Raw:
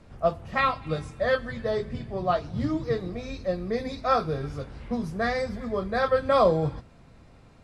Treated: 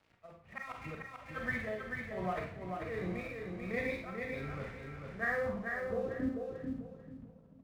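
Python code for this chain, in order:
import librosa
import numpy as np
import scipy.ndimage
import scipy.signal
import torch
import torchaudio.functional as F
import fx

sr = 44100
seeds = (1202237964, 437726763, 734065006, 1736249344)

y = scipy.signal.sosfilt(scipy.signal.butter(2, 53.0, 'highpass', fs=sr, output='sos'), x)
y = fx.transient(y, sr, attack_db=-12, sustain_db=2)
y = fx.over_compress(y, sr, threshold_db=-29.0, ratio=-0.5)
y = fx.auto_swell(y, sr, attack_ms=138.0)
y = fx.filter_sweep_lowpass(y, sr, from_hz=2200.0, to_hz=210.0, start_s=5.15, end_s=6.4, q=4.2)
y = np.sign(y) * np.maximum(np.abs(y) - 10.0 ** (-48.5 / 20.0), 0.0)
y = y * (1.0 - 0.93 / 2.0 + 0.93 / 2.0 * np.cos(2.0 * np.pi * 1.3 * (np.arange(len(y)) / sr)))
y = fx.echo_feedback(y, sr, ms=441, feedback_pct=27, wet_db=-4.5)
y = fx.rev_schroeder(y, sr, rt60_s=0.35, comb_ms=33, drr_db=3.0)
y = y * librosa.db_to_amplitude(-7.5)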